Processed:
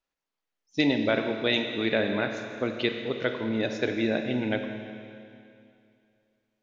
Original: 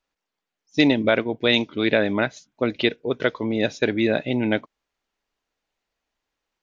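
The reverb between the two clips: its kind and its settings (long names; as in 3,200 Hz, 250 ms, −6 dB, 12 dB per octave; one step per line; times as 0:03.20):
four-comb reverb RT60 2.5 s, combs from 28 ms, DRR 5 dB
level −6.5 dB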